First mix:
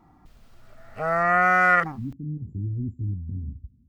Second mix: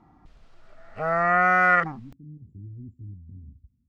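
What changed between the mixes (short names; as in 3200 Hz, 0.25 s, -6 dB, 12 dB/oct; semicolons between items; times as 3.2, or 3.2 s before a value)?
speech -11.5 dB; background: add air absorption 79 m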